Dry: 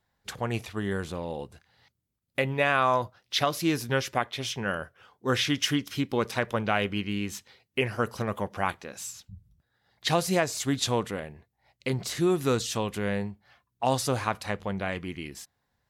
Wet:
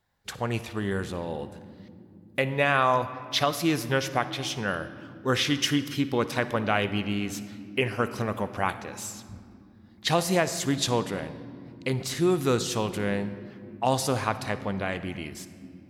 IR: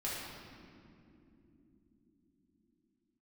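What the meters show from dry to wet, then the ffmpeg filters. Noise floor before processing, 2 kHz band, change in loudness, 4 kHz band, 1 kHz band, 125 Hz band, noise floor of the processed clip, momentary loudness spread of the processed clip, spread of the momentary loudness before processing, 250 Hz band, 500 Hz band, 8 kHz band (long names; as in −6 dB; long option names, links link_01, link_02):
−79 dBFS, +1.0 dB, +1.5 dB, +1.0 dB, +1.5 dB, +1.5 dB, −52 dBFS, 15 LU, 13 LU, +1.5 dB, +1.5 dB, +1.0 dB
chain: -filter_complex "[0:a]asplit=2[link_01][link_02];[1:a]atrim=start_sample=2205,adelay=56[link_03];[link_02][link_03]afir=irnorm=-1:irlink=0,volume=-16dB[link_04];[link_01][link_04]amix=inputs=2:normalize=0,volume=1dB"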